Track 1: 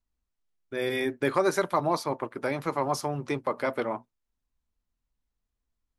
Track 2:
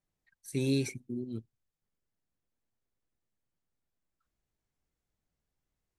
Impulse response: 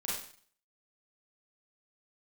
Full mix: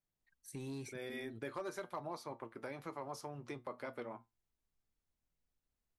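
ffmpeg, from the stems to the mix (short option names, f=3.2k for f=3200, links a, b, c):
-filter_complex "[0:a]flanger=delay=8:depth=1.4:regen=73:speed=0.56:shape=triangular,adelay=200,volume=-4dB[a];[1:a]asoftclip=type=tanh:threshold=-25.5dB,volume=-6.5dB[b];[a][b]amix=inputs=2:normalize=0,asoftclip=type=hard:threshold=-23.5dB,acompressor=threshold=-47dB:ratio=2"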